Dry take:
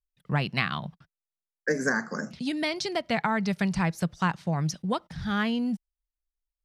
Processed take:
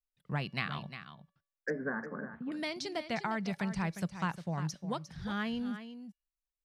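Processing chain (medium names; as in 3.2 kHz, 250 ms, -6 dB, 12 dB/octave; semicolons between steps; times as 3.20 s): 1.70–2.52 s: low-pass 1.6 kHz 24 dB/octave; feedback comb 570 Hz, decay 0.58 s, mix 40%; delay 354 ms -11 dB; trim -4 dB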